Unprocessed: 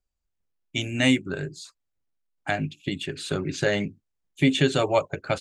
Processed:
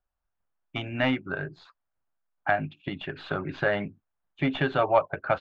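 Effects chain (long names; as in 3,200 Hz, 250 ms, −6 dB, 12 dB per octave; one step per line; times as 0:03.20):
stylus tracing distortion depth 0.035 ms
in parallel at −1 dB: downward compressor, threshold −30 dBFS, peak gain reduction 14.5 dB
on the sum: low-pass filter 3,300 Hz 24 dB per octave
flat-topped bell 1,000 Hz +9.5 dB
level −8 dB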